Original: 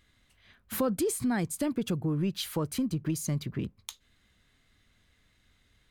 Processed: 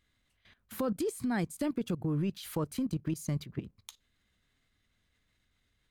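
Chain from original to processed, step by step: level held to a coarse grid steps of 15 dB

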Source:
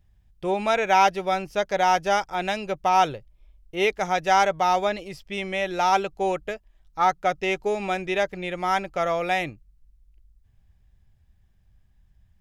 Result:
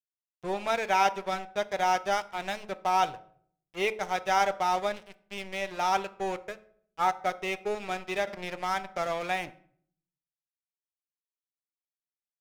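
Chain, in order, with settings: crossover distortion -33.5 dBFS; de-hum 107.9 Hz, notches 14; on a send at -15 dB: reverberation RT60 0.55 s, pre-delay 5 ms; 8.27–9.48 s: on the sum: three bands compressed up and down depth 40%; trim -4.5 dB

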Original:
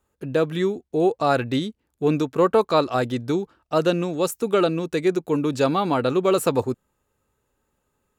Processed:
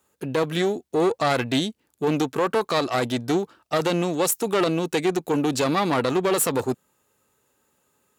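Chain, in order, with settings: single-diode clipper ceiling -24 dBFS; peak limiter -16.5 dBFS, peak gain reduction 7.5 dB; Bessel high-pass 150 Hz, order 2; treble shelf 3 kHz +7 dB; trim +4 dB

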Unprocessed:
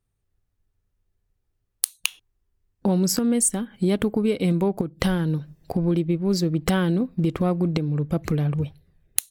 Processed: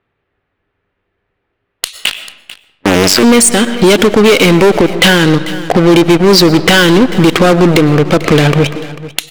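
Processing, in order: 1.98–3.23 s: cycle switcher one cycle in 2, muted; frequency weighting D; level-controlled noise filter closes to 1.6 kHz, open at -20 dBFS; tone controls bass -9 dB, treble -13 dB; in parallel at -5.5 dB: fuzz box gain 33 dB, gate -37 dBFS; on the sum: vibrato 1.3 Hz 6.8 cents; saturation -16.5 dBFS, distortion -14 dB; delay 443 ms -22 dB; on a send at -17.5 dB: reverberation RT60 0.95 s, pre-delay 79 ms; on the sum: loudness maximiser +22 dB; trim -1 dB

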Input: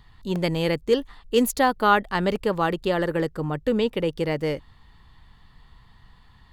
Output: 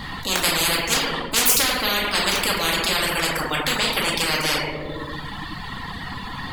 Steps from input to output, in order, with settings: simulated room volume 430 m³, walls mixed, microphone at 2.2 m; reverb removal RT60 0.98 s; spectrum-flattening compressor 10:1

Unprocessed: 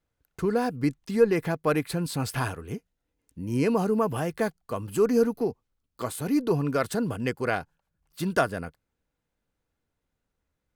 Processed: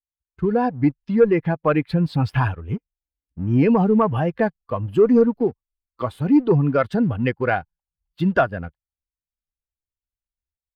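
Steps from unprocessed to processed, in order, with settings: expander on every frequency bin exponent 1.5; level rider gain up to 10.5 dB; waveshaping leveller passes 1; in parallel at -1.5 dB: compression, threshold -22 dBFS, peak gain reduction 15 dB; on the sum: distance through air 380 m; trim -4 dB

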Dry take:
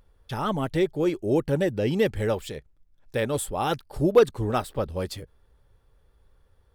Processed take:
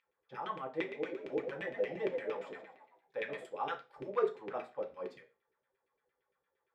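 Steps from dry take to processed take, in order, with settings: 0.75–3.44 s: frequency-shifting echo 124 ms, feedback 47%, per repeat +82 Hz, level -10 dB; LFO band-pass saw down 8.7 Hz 300–2700 Hz; peaking EQ 310 Hz -8.5 dB 0.35 oct; reverberation RT60 0.30 s, pre-delay 3 ms, DRR 2 dB; trim -8.5 dB

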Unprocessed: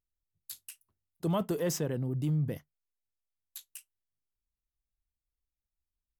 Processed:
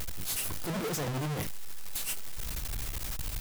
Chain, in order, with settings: one-bit comparator; granular stretch 0.55×, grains 156 ms; trim +6 dB

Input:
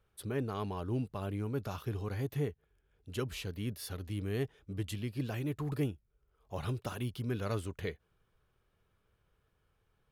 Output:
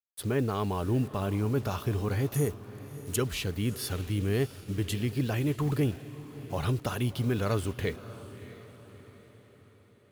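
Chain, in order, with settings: 2.34–3.16 s: resonant high shelf 5.1 kHz +14 dB, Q 1.5; in parallel at -2 dB: peak limiter -29.5 dBFS, peak gain reduction 7.5 dB; on the sum: bit crusher 9-bit; echo that smears into a reverb 636 ms, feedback 49%, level -15 dB; trim +3 dB

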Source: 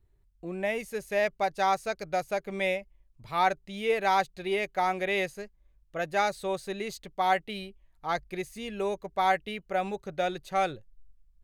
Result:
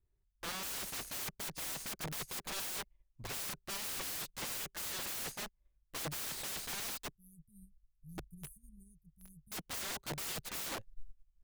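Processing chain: 7.16–9.52 s: Chebyshev band-stop 150–9500 Hz, order 4; dynamic bell 300 Hz, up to -6 dB, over -57 dBFS, Q 6.5; integer overflow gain 42.5 dB; upward expansion 2.5:1, over -60 dBFS; trim +10.5 dB

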